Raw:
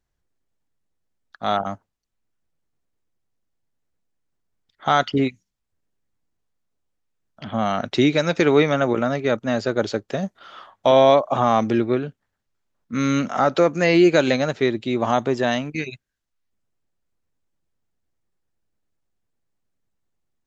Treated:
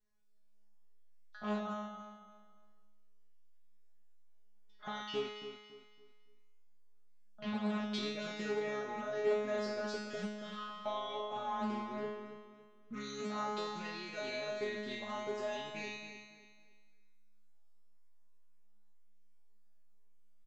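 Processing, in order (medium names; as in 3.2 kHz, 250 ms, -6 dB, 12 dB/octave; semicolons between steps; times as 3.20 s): peak limiter -13 dBFS, peak gain reduction 9 dB; compression 3:1, threshold -33 dBFS, peak gain reduction 11.5 dB; feedback comb 210 Hz, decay 1.1 s, mix 100%; on a send: feedback delay 280 ms, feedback 34%, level -9 dB; on the sum: loudspeaker Doppler distortion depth 0.28 ms; trim +15 dB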